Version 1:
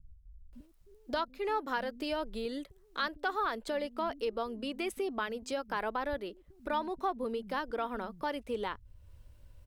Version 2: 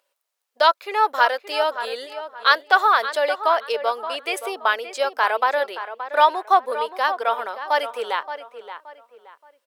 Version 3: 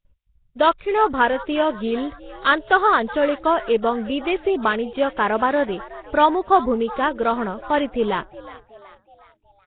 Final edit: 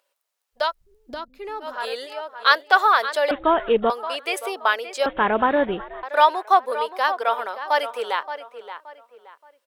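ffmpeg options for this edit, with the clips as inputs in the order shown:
-filter_complex "[2:a]asplit=2[a][b];[1:a]asplit=4[c][d][e][f];[c]atrim=end=0.76[g];[0:a]atrim=start=0.52:end=1.84[h];[d]atrim=start=1.6:end=3.312[i];[a]atrim=start=3.308:end=3.902[j];[e]atrim=start=3.898:end=5.062[k];[b]atrim=start=5.058:end=6.032[l];[f]atrim=start=6.028[m];[g][h]acrossfade=d=0.24:c1=tri:c2=tri[n];[n][i]acrossfade=d=0.24:c1=tri:c2=tri[o];[o][j]acrossfade=d=0.004:c1=hsin:c2=hsin[p];[p][k]acrossfade=d=0.004:c1=hsin:c2=hsin[q];[q][l]acrossfade=d=0.004:c1=hsin:c2=hsin[r];[r][m]acrossfade=d=0.004:c1=hsin:c2=hsin"

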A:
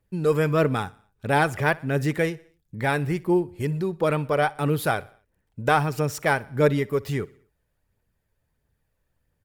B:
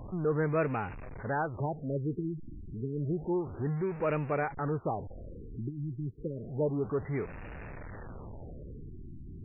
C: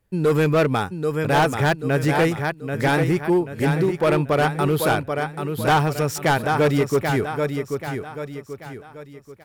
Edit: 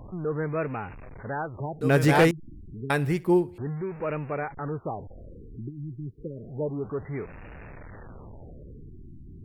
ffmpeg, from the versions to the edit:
-filter_complex "[1:a]asplit=3[a][b][c];[a]atrim=end=1.812[d];[2:a]atrim=start=1.808:end=2.312[e];[b]atrim=start=2.308:end=2.902[f];[0:a]atrim=start=2.898:end=3.582[g];[c]atrim=start=3.578[h];[d][e]acrossfade=d=0.004:c1=hsin:c2=hsin[i];[i][f]acrossfade=d=0.004:c1=hsin:c2=hsin[j];[j][g]acrossfade=d=0.004:c1=hsin:c2=hsin[k];[k][h]acrossfade=d=0.004:c1=hsin:c2=hsin"

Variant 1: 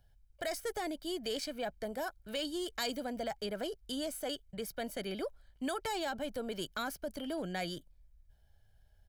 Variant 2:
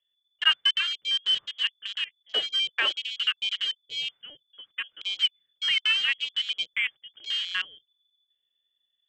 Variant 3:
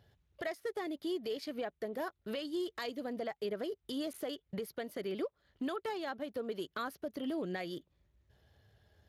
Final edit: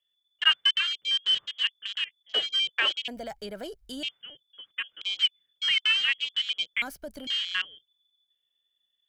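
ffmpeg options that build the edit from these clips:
-filter_complex "[0:a]asplit=2[a][b];[1:a]asplit=3[c][d][e];[c]atrim=end=3.082[f];[a]atrim=start=3.078:end=4.032[g];[d]atrim=start=4.028:end=6.822[h];[b]atrim=start=6.818:end=7.272[i];[e]atrim=start=7.268[j];[f][g]acrossfade=d=0.004:c1=hsin:c2=hsin[k];[k][h]acrossfade=d=0.004:c1=hsin:c2=hsin[l];[l][i]acrossfade=d=0.004:c1=hsin:c2=hsin[m];[m][j]acrossfade=d=0.004:c1=hsin:c2=hsin"

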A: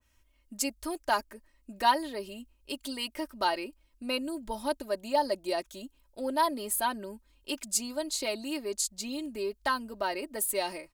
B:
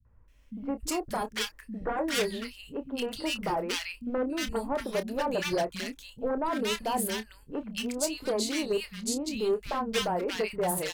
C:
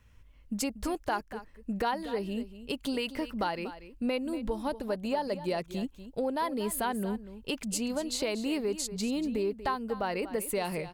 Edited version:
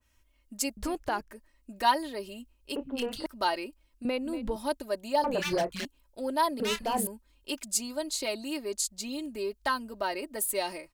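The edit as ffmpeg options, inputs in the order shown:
-filter_complex "[2:a]asplit=2[a][b];[1:a]asplit=3[c][d][e];[0:a]asplit=6[f][g][h][i][j][k];[f]atrim=end=0.772[l];[a]atrim=start=0.768:end=1.312[m];[g]atrim=start=1.308:end=2.762[n];[c]atrim=start=2.758:end=3.262[o];[h]atrim=start=3.258:end=4.052[p];[b]atrim=start=4.048:end=4.562[q];[i]atrim=start=4.558:end=5.242[r];[d]atrim=start=5.238:end=5.852[s];[j]atrim=start=5.848:end=6.602[t];[e]atrim=start=6.598:end=7.072[u];[k]atrim=start=7.068[v];[l][m]acrossfade=d=0.004:c1=hsin:c2=hsin[w];[w][n]acrossfade=d=0.004:c1=hsin:c2=hsin[x];[x][o]acrossfade=d=0.004:c1=hsin:c2=hsin[y];[y][p]acrossfade=d=0.004:c1=hsin:c2=hsin[z];[z][q]acrossfade=d=0.004:c1=hsin:c2=hsin[aa];[aa][r]acrossfade=d=0.004:c1=hsin:c2=hsin[ab];[ab][s]acrossfade=d=0.004:c1=hsin:c2=hsin[ac];[ac][t]acrossfade=d=0.004:c1=hsin:c2=hsin[ad];[ad][u]acrossfade=d=0.004:c1=hsin:c2=hsin[ae];[ae][v]acrossfade=d=0.004:c1=hsin:c2=hsin"

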